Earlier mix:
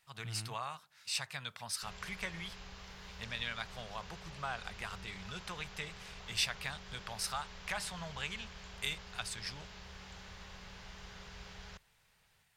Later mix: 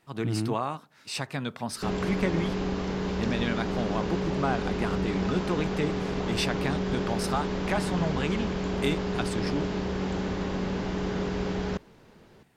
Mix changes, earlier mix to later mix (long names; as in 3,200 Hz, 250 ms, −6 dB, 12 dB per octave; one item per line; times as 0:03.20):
background +8.0 dB
master: remove guitar amp tone stack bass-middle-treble 10-0-10